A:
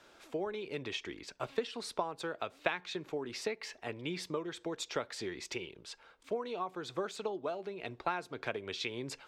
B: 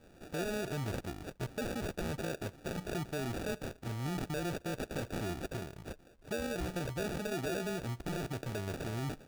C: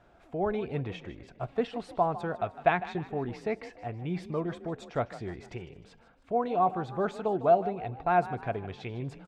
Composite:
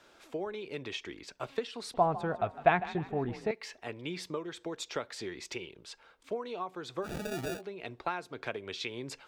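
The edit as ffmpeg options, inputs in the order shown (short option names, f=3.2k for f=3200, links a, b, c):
-filter_complex "[0:a]asplit=3[a][b][c];[a]atrim=end=1.942[d];[2:a]atrim=start=1.938:end=3.512[e];[b]atrim=start=3.508:end=7.12[f];[1:a]atrim=start=7.02:end=7.62[g];[c]atrim=start=7.52[h];[d][e]acrossfade=d=0.004:c1=hsin:c2=hsin[i];[i][f]acrossfade=d=0.004:c1=hsin:c2=hsin[j];[j][g]acrossfade=d=0.1:c1=tri:c2=tri[k];[k][h]acrossfade=d=0.1:c1=tri:c2=tri"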